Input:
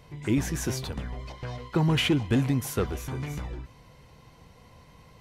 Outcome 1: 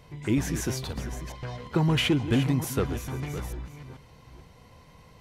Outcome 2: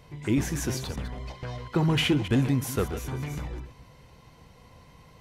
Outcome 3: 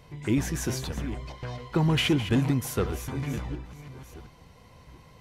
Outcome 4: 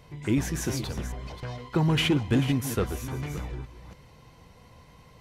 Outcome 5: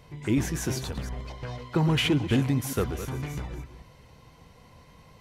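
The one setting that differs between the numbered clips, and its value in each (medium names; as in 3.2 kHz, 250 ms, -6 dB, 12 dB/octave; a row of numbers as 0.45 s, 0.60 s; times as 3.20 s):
chunks repeated in reverse, time: 441 ms, 120 ms, 711 ms, 281 ms, 182 ms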